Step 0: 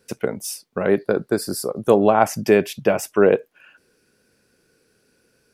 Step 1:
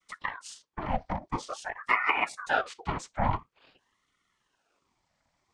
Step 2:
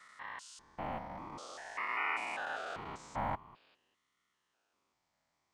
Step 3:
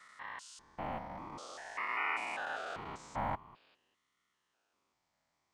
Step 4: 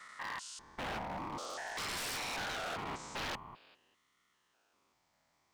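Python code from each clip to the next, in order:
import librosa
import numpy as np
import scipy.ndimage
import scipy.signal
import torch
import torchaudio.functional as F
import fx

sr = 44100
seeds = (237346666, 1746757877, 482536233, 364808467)

y1 = fx.noise_vocoder(x, sr, seeds[0], bands=12)
y1 = fx.spec_box(y1, sr, start_s=2.09, length_s=0.4, low_hz=1400.0, high_hz=4800.0, gain_db=-15)
y1 = fx.ring_lfo(y1, sr, carrier_hz=1000.0, swing_pct=65, hz=0.48)
y1 = y1 * librosa.db_to_amplitude(-8.5)
y2 = fx.spec_steps(y1, sr, hold_ms=200)
y2 = fx.quant_float(y2, sr, bits=6)
y2 = fx.low_shelf(y2, sr, hz=120.0, db=-9.5)
y2 = y2 * librosa.db_to_amplitude(-4.0)
y3 = y2
y4 = 10.0 ** (-39.5 / 20.0) * (np.abs((y3 / 10.0 ** (-39.5 / 20.0) + 3.0) % 4.0 - 2.0) - 1.0)
y4 = y4 * librosa.db_to_amplitude(5.5)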